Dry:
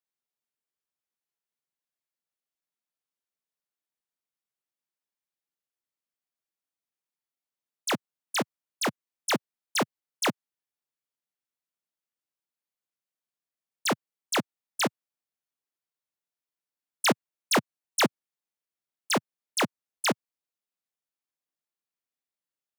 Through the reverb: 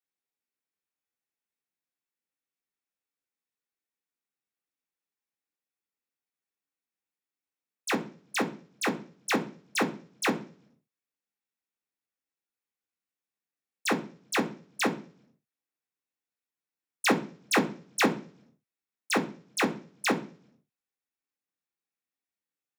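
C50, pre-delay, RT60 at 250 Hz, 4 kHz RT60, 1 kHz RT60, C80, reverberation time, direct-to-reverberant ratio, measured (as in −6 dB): 14.5 dB, 3 ms, 0.70 s, 0.55 s, 0.40 s, 19.5 dB, 0.45 s, 1.5 dB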